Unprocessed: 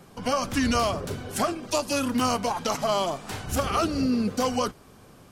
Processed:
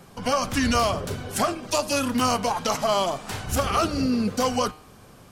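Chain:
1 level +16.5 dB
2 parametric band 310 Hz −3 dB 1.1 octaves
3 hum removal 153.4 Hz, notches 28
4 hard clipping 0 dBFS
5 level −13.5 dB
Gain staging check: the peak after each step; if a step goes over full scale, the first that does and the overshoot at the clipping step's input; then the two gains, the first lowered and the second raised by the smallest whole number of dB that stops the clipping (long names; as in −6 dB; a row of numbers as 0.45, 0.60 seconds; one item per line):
+5.0, +4.0, +4.0, 0.0, −13.5 dBFS
step 1, 4.0 dB
step 1 +12.5 dB, step 5 −9.5 dB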